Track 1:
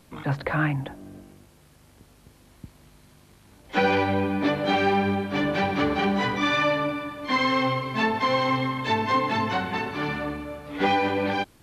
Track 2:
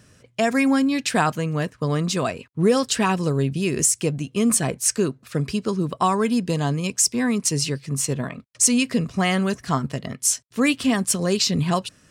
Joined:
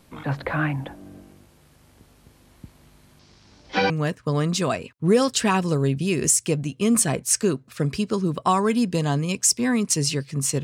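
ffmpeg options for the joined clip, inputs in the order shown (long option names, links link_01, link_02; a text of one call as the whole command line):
ffmpeg -i cue0.wav -i cue1.wav -filter_complex "[0:a]asettb=1/sr,asplit=3[link_01][link_02][link_03];[link_01]atrim=end=3.194[link_04];[link_02]atrim=start=3.19:end=3.9,asetpts=PTS-STARTPTS,afade=type=in:duration=0.004:curve=qsin,afade=type=out:start_time=0.706:duration=0.004:curve=qsin,lowpass=frequency=5300:width_type=q:width=3.3[link_05];[link_03]atrim=start=3.896[link_06];[link_04][link_05]acrossfade=duration=0.004:curve1=hsin:curve2=qsin[link_07];[link_07][link_06]acrossfade=duration=0.004:curve1=qsin:curve2=hsin,apad=whole_dur=10.63,atrim=end=10.63,atrim=end=3.902[link_08];[1:a]atrim=start=1.448:end=8.18[link_09];[link_08][link_09]acrossfade=duration=0.004:curve1=hsin:curve2=hsin" out.wav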